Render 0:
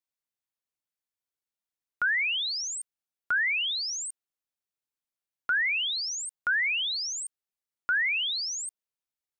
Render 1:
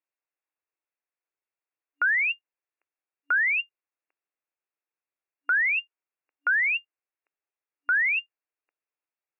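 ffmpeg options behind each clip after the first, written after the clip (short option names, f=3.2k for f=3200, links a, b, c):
-af "afftfilt=real='re*between(b*sr/4096,280,2800)':imag='im*between(b*sr/4096,280,2800)':win_size=4096:overlap=0.75,volume=3dB"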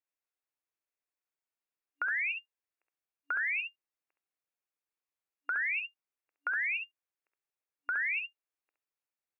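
-filter_complex "[0:a]acompressor=threshold=-27dB:ratio=4,asplit=2[a][b];[b]aecho=0:1:50|67:0.141|0.562[c];[a][c]amix=inputs=2:normalize=0,volume=-5dB"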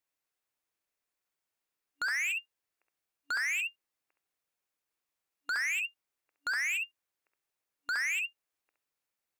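-af "asoftclip=type=hard:threshold=-35.5dB,volume=5.5dB"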